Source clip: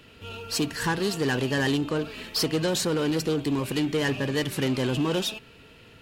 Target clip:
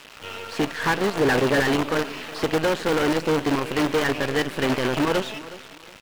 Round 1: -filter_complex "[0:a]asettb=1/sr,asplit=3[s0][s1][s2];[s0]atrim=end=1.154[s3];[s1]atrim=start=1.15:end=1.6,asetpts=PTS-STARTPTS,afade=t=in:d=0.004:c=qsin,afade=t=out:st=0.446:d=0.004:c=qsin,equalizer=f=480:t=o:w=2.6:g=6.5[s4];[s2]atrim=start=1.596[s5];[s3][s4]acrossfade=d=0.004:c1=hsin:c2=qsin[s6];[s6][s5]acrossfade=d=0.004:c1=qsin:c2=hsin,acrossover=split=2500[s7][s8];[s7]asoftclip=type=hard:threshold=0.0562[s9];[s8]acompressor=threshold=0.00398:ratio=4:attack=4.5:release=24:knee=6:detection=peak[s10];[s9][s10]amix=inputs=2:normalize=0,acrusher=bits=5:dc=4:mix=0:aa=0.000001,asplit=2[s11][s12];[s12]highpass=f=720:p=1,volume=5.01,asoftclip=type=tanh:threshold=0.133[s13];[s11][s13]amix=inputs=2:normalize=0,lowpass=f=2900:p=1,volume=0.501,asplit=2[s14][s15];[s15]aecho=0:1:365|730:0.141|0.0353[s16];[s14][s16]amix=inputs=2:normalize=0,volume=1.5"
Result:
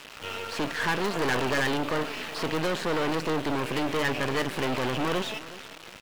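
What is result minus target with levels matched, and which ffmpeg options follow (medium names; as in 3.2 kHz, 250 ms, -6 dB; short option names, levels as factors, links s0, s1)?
hard clipper: distortion +9 dB
-filter_complex "[0:a]asettb=1/sr,asplit=3[s0][s1][s2];[s0]atrim=end=1.154[s3];[s1]atrim=start=1.15:end=1.6,asetpts=PTS-STARTPTS,afade=t=in:d=0.004:c=qsin,afade=t=out:st=0.446:d=0.004:c=qsin,equalizer=f=480:t=o:w=2.6:g=6.5[s4];[s2]atrim=start=1.596[s5];[s3][s4]acrossfade=d=0.004:c1=hsin:c2=qsin[s6];[s6][s5]acrossfade=d=0.004:c1=qsin:c2=hsin,acrossover=split=2500[s7][s8];[s7]asoftclip=type=hard:threshold=0.126[s9];[s8]acompressor=threshold=0.00398:ratio=4:attack=4.5:release=24:knee=6:detection=peak[s10];[s9][s10]amix=inputs=2:normalize=0,acrusher=bits=5:dc=4:mix=0:aa=0.000001,asplit=2[s11][s12];[s12]highpass=f=720:p=1,volume=5.01,asoftclip=type=tanh:threshold=0.133[s13];[s11][s13]amix=inputs=2:normalize=0,lowpass=f=2900:p=1,volume=0.501,asplit=2[s14][s15];[s15]aecho=0:1:365|730:0.141|0.0353[s16];[s14][s16]amix=inputs=2:normalize=0,volume=1.5"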